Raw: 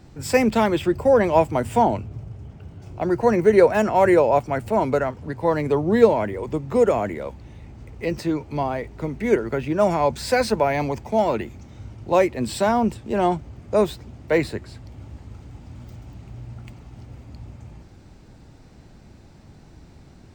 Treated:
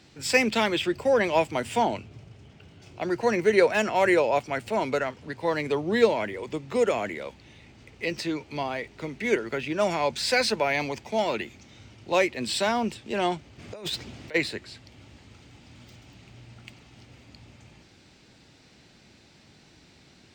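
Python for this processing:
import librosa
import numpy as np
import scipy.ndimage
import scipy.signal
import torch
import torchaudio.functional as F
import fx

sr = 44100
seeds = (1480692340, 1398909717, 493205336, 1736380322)

y = fx.weighting(x, sr, curve='D')
y = fx.over_compress(y, sr, threshold_db=-30.0, ratio=-1.0, at=(13.58, 14.34), fade=0.02)
y = F.gain(torch.from_numpy(y), -5.5).numpy()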